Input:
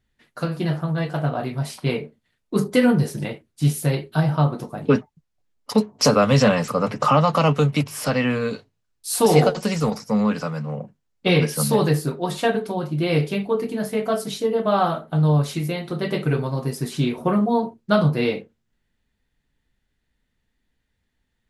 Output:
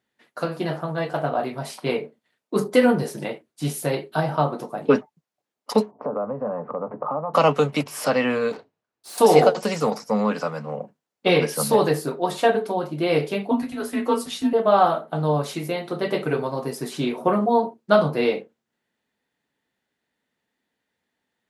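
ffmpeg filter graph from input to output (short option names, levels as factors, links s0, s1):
-filter_complex "[0:a]asettb=1/sr,asplit=3[s0][s1][s2];[s0]atrim=end=5.914[s3];[s1]atrim=start=5.91:end=7.34,asetpts=PTS-STARTPTS,afade=t=in:d=0.004:c=qsin,afade=t=out:st=1.426:d=0.004:c=qsin,lowpass=f=1100:w=0.5412,lowpass=f=1100:w=1.3066,acompressor=threshold=0.0398:ratio=3:attack=3.2:release=140:knee=1:detection=peak[s4];[s2]atrim=start=7.336[s5];[s3][s4]acrossfade=d=0.004:c1=hsin:c2=qsin[s6];[s6][s5]acrossfade=d=0.004:c1=qsin:c2=hsin,asettb=1/sr,asplit=3[s7][s8][s9];[s7]atrim=end=8.524[s10];[s8]atrim=start=8.52:end=9.18,asetpts=PTS-STARTPTS,afade=t=in:d=0.004:c=qsin,afade=t=out:st=0.656:d=0.004:c=qsin,lowpass=f=2100:p=1,acontrast=59,aeval=exprs='(tanh(56.2*val(0)+0.65)-tanh(0.65))/56.2':c=same[s11];[s9]atrim=start=9.176[s12];[s10][s11]acrossfade=d=0.004:c1=hsin:c2=qsin[s13];[s13][s12]acrossfade=d=0.004:c1=qsin:c2=hsin,asettb=1/sr,asplit=3[s14][s15][s16];[s14]atrim=end=13.514[s17];[s15]atrim=start=13.51:end=14.53,asetpts=PTS-STARTPTS,afade=t=in:d=0.004:c=qsin,afade=t=out:st=1.016:d=0.004:c=qsin,afreqshift=-200,asplit=2[s18][s19];[s19]adelay=12,volume=0.447[s20];[s18][s20]amix=inputs=2:normalize=0,atrim=end_sample=44982[s21];[s16]atrim=start=14.526[s22];[s17][s21]acrossfade=d=0.004:c1=hsin:c2=qsin[s23];[s23][s22]acrossfade=d=0.004:c1=qsin:c2=hsin,highpass=220,equalizer=f=700:w=0.72:g=5.5,volume=0.841"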